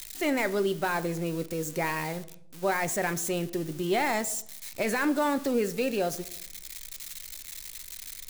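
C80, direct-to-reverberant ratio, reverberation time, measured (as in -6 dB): 20.5 dB, 12.0 dB, 0.70 s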